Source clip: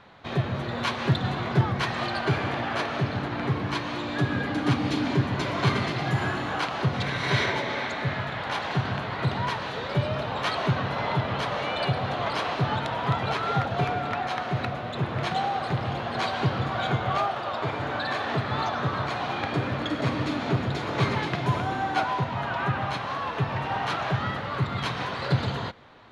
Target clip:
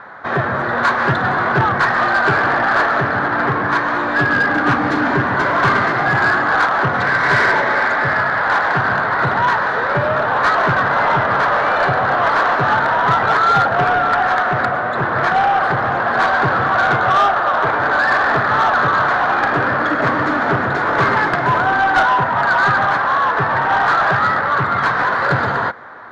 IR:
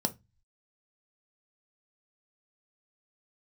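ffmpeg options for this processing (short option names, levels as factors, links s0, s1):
-filter_complex "[0:a]highshelf=f=2100:t=q:w=3:g=-9,asplit=2[s0][s1];[s1]highpass=f=720:p=1,volume=7.08,asoftclip=type=tanh:threshold=0.335[s2];[s0][s2]amix=inputs=2:normalize=0,lowpass=f=4000:p=1,volume=0.501,volume=1.68"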